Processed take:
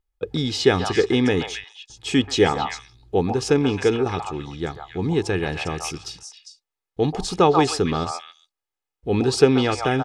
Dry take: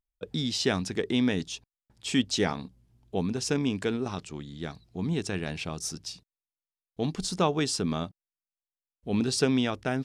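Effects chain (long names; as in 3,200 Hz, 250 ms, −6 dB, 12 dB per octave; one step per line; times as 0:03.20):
high-shelf EQ 3,400 Hz −9.5 dB
comb filter 2.4 ms, depth 54%
echo through a band-pass that steps 134 ms, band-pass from 940 Hz, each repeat 1.4 octaves, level −1 dB
level +8.5 dB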